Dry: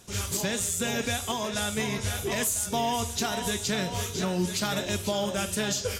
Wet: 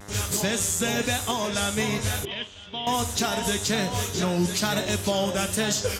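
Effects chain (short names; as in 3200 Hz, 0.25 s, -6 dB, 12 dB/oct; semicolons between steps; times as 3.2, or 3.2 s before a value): buzz 100 Hz, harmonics 21, -48 dBFS -3 dB/oct; vibrato 1.1 Hz 54 cents; 2.25–2.87 ladder low-pass 3300 Hz, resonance 80%; gain +3.5 dB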